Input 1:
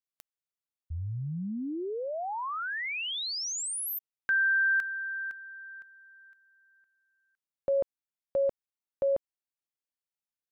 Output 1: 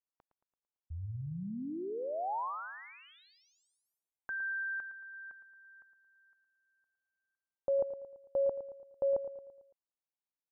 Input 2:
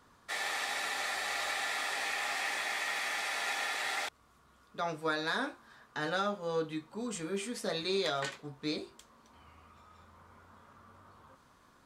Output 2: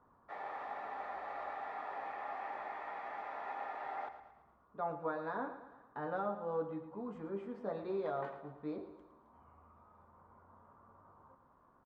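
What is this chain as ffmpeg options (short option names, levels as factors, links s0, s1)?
-filter_complex "[0:a]lowpass=f=940:t=q:w=1.7,asplit=2[s0][s1];[s1]aecho=0:1:112|224|336|448|560:0.266|0.13|0.0639|0.0313|0.0153[s2];[s0][s2]amix=inputs=2:normalize=0,volume=0.501"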